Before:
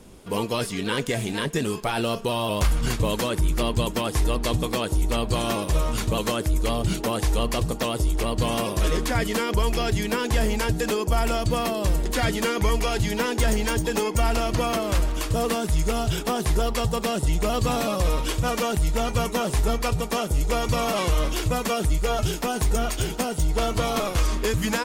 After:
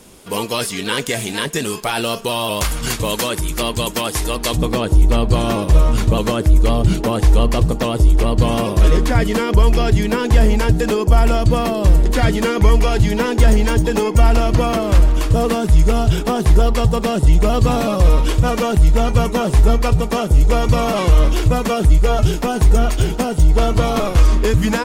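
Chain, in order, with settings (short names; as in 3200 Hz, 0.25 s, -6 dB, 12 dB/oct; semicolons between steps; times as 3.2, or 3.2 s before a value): tilt +1.5 dB/oct, from 4.56 s -1.5 dB/oct; gain +5.5 dB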